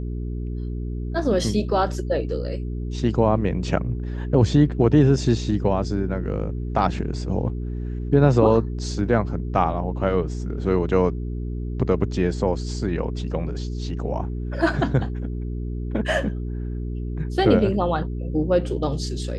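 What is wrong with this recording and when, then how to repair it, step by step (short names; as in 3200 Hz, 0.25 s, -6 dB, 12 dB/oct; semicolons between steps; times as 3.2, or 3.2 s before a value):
hum 60 Hz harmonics 7 -28 dBFS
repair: de-hum 60 Hz, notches 7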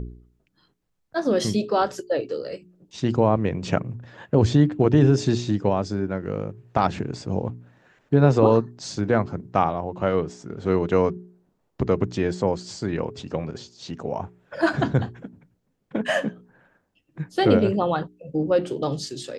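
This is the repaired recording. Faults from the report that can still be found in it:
none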